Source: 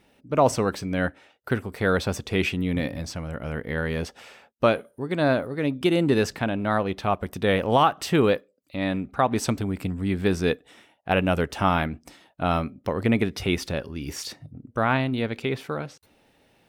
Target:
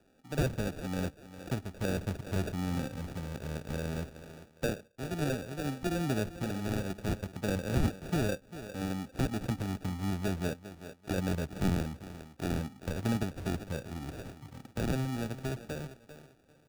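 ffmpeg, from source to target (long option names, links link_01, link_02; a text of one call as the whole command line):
ffmpeg -i in.wav -filter_complex "[0:a]asplit=2[link_01][link_02];[link_02]adelay=395,lowpass=frequency=3500:poles=1,volume=-16dB,asplit=2[link_03][link_04];[link_04]adelay=395,lowpass=frequency=3500:poles=1,volume=0.22[link_05];[link_01][link_03][link_05]amix=inputs=3:normalize=0,acrusher=samples=42:mix=1:aa=0.000001,acrossover=split=220[link_06][link_07];[link_07]acompressor=threshold=-41dB:ratio=1.5[link_08];[link_06][link_08]amix=inputs=2:normalize=0,volume=-5.5dB" out.wav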